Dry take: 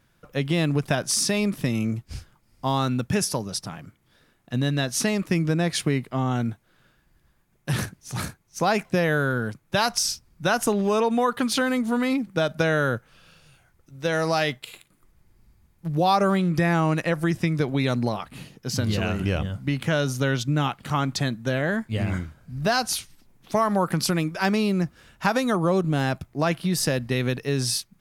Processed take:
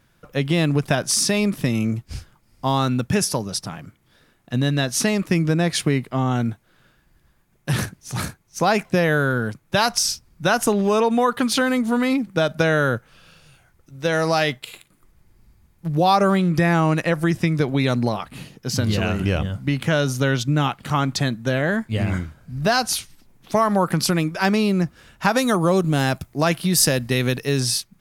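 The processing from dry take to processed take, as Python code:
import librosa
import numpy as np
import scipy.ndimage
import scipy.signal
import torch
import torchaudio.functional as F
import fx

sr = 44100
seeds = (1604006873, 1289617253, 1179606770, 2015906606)

y = fx.high_shelf(x, sr, hz=5000.0, db=9.0, at=(25.37, 27.6))
y = F.gain(torch.from_numpy(y), 3.5).numpy()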